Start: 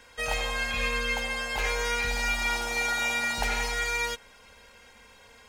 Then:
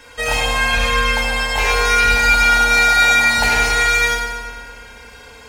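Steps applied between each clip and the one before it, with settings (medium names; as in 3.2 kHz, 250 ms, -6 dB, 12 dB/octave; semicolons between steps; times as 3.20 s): FDN reverb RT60 1.9 s, low-frequency decay 1.35×, high-frequency decay 0.7×, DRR -2 dB; trim +8.5 dB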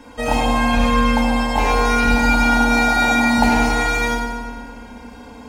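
FFT filter 140 Hz 0 dB, 250 Hz +15 dB, 440 Hz -2 dB, 830 Hz +4 dB, 1.6 kHz -9 dB; trim +2 dB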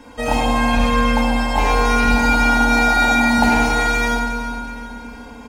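feedback delay 370 ms, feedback 47%, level -14 dB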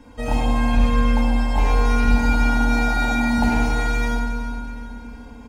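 bass shelf 230 Hz +11.5 dB; trim -8.5 dB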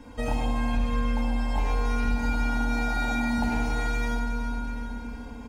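compression 2.5:1, threshold -26 dBFS, peak gain reduction 10.5 dB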